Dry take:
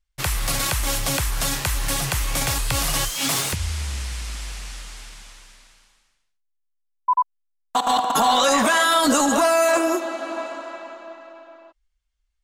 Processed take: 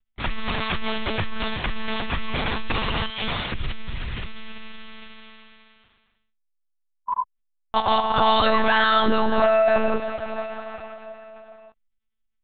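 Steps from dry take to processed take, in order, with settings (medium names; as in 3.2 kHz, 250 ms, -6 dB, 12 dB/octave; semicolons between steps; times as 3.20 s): monotone LPC vocoder at 8 kHz 220 Hz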